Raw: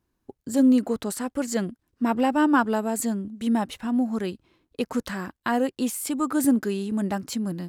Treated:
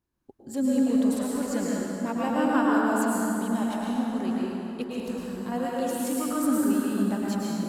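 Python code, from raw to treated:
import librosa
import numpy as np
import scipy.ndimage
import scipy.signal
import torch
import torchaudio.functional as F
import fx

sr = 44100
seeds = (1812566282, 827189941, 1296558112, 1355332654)

y = fx.peak_eq(x, sr, hz=1800.0, db=-12.5, octaves=2.2, at=(4.89, 5.52))
y = fx.rev_plate(y, sr, seeds[0], rt60_s=3.4, hf_ratio=0.6, predelay_ms=95, drr_db=-5.5)
y = y * 10.0 ** (-8.0 / 20.0)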